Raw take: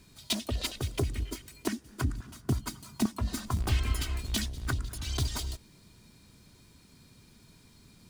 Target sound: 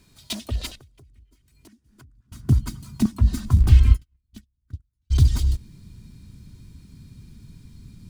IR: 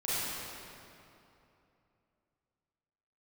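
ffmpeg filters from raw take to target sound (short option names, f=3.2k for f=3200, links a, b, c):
-filter_complex "[0:a]asplit=3[a][b][c];[a]afade=t=out:st=3.91:d=0.02[d];[b]agate=range=-52dB:threshold=-25dB:ratio=16:detection=peak,afade=t=in:st=3.91:d=0.02,afade=t=out:st=5.1:d=0.02[e];[c]afade=t=in:st=5.1:d=0.02[f];[d][e][f]amix=inputs=3:normalize=0,asubboost=boost=7.5:cutoff=210,asettb=1/sr,asplit=3[g][h][i];[g]atrim=end=0.754[j];[h]atrim=start=0.75:end=2.32,asetpts=PTS-STARTPTS,afade=t=in:d=0.004:c=qsin,afade=t=out:st=1.566:d=0.004:c=qsin,acompressor=threshold=-50dB:ratio=12[k];[i]atrim=start=2.316[l];[j][k]acrossfade=d=0.004:c1=hsin:c2=qsin[m];[m][l]acrossfade=d=0.004:c1=qsin:c2=hsin"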